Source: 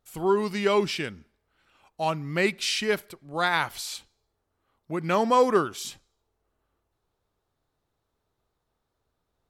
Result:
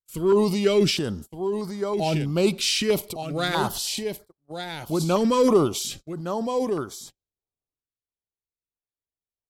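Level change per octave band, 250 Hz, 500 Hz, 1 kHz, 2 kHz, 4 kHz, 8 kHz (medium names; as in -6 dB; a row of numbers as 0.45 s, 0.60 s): +7.0 dB, +4.0 dB, -2.0 dB, -3.5 dB, +4.5 dB, +6.5 dB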